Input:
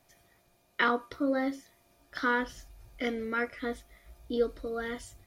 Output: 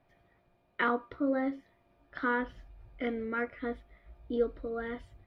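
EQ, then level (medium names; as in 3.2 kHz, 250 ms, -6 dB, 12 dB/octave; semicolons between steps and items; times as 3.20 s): distance through air 470 m; treble shelf 6.7 kHz +5.5 dB; 0.0 dB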